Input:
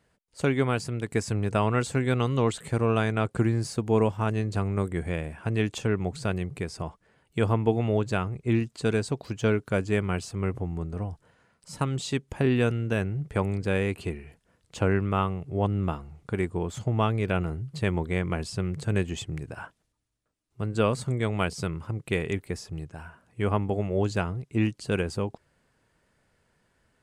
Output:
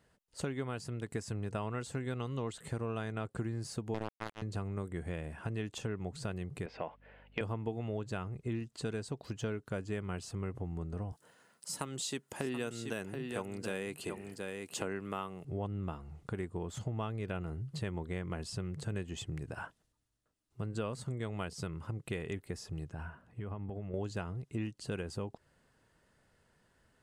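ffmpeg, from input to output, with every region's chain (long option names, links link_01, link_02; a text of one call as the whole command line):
ffmpeg -i in.wav -filter_complex "[0:a]asettb=1/sr,asplit=3[link_01][link_02][link_03];[link_01]atrim=end=3.944[link_04];[link_02]atrim=start=3.94:end=4.42,asetpts=PTS-STARTPTS,afade=type=in:duration=0.004:curve=qsin,afade=type=out:start_time=0.476:duration=0.004:curve=qsin,highpass=frequency=49:width=0.5412,highpass=frequency=49:width=1.3066,acrusher=bits=2:mix=0:aa=0.5[link_05];[link_03]atrim=start=4.416[link_06];[link_04][link_05]acrossfade=duration=0.004:curve1=hsin:curve2=qsin[link_07];[link_07][link_06]acrossfade=duration=0.004:curve1=qsin:curve2=hsin,asettb=1/sr,asplit=3[link_08][link_09][link_10];[link_08]atrim=end=6.664[link_11];[link_09]atrim=start=6.66:end=7.41,asetpts=PTS-STARTPTS,afade=type=in:duration=0.004:curve=qsin,afade=type=out:start_time=0.746:duration=0.004:curve=qsin,highpass=350,equalizer=frequency=360:width_type=q:width=4:gain=-7,equalizer=frequency=550:width_type=q:width=4:gain=5,equalizer=frequency=1200:width_type=q:width=4:gain=-6,equalizer=frequency=2400:width_type=q:width=4:gain=7,lowpass=frequency=3100:width=0.5412,lowpass=frequency=3100:width=1.3066,aeval=exprs='val(0)+0.000501*(sin(2*PI*50*n/s)+sin(2*PI*2*50*n/s)/2+sin(2*PI*3*50*n/s)/3+sin(2*PI*4*50*n/s)/4+sin(2*PI*5*50*n/s)/5)':channel_layout=same,acontrast=86[link_12];[link_10]atrim=start=7.406[link_13];[link_11][link_12]acrossfade=duration=0.004:curve1=hsin:curve2=qsin[link_14];[link_14][link_13]acrossfade=duration=0.004:curve1=qsin:curve2=hsin,asettb=1/sr,asplit=3[link_15][link_16][link_17];[link_15]atrim=end=11.124[link_18];[link_16]atrim=start=11.12:end=15.45,asetpts=PTS-STARTPTS,afade=type=in:duration=0.004:curve=qsin,afade=type=out:start_time=4.326:duration=0.004:curve=qsin,highpass=200,aemphasis=mode=production:type=50kf,aecho=1:1:729:0.335,atrim=end_sample=190953[link_19];[link_17]atrim=start=15.446[link_20];[link_18][link_19]acrossfade=duration=0.004:curve1=hsin:curve2=qsin[link_21];[link_21][link_20]acrossfade=duration=0.004:curve1=qsin:curve2=hsin,asettb=1/sr,asplit=3[link_22][link_23][link_24];[link_22]atrim=end=22.934[link_25];[link_23]atrim=start=22.93:end=23.94,asetpts=PTS-STARTPTS,afade=type=in:duration=0.004:curve=qsin,afade=type=out:start_time=1.006:duration=0.004:curve=qsin,bass=frequency=250:gain=4,treble=frequency=4000:gain=-10,acompressor=threshold=-34dB:ratio=6:attack=3.2:release=140:knee=1:detection=peak[link_26];[link_24]atrim=start=23.936[link_27];[link_25][link_26]acrossfade=duration=0.004:curve1=hsin:curve2=qsin[link_28];[link_28][link_27]acrossfade=duration=0.004:curve1=qsin:curve2=hsin,bandreject=frequency=2300:width=13,acompressor=threshold=-36dB:ratio=3,volume=-1.5dB" out.wav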